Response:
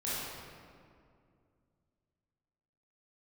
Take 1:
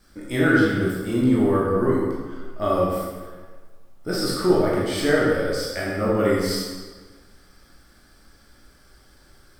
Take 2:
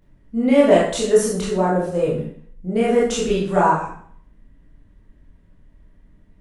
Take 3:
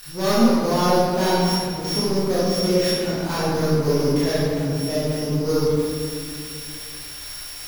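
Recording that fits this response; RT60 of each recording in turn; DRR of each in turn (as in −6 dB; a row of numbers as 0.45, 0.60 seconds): 3; 1.4, 0.55, 2.3 seconds; −6.5, −7.0, −10.5 decibels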